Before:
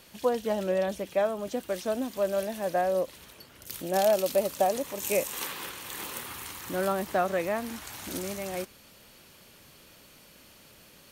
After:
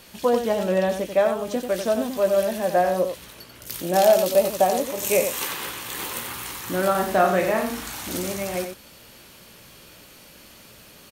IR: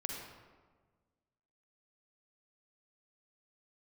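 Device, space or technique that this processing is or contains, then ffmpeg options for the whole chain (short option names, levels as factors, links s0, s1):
slapback doubling: -filter_complex "[0:a]asplit=3[s0][s1][s2];[s1]adelay=17,volume=0.398[s3];[s2]adelay=91,volume=0.447[s4];[s0][s3][s4]amix=inputs=3:normalize=0,asettb=1/sr,asplit=3[s5][s6][s7];[s5]atrim=end=6.914[s8];[s6]atrim=start=6.91:end=8.03,asetpts=PTS-STARTPTS,afade=t=in:d=0.004:c=qsin,afade=t=out:st=1.116:d=0.004:c=qsin,asplit=2[s9][s10];[s10]adelay=37,volume=0.562[s11];[s9][s11]amix=inputs=2:normalize=0,atrim=end_sample=49392[s12];[s7]atrim=start=8.026[s13];[s8][s12]acrossfade=d=0.004:c1=hsin:c2=qsin[s14];[s14][s13]acrossfade=d=0.004:c1=qsin:c2=hsin,volume=1.88"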